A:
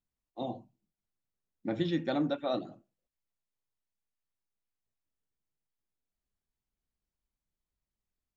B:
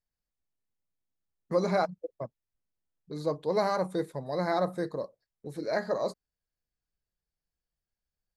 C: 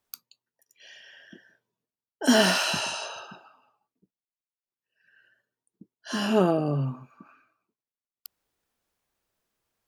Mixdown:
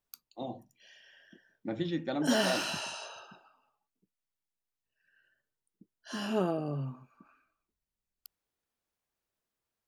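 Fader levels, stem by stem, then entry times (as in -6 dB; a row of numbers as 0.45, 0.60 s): -2.5 dB, off, -8.5 dB; 0.00 s, off, 0.00 s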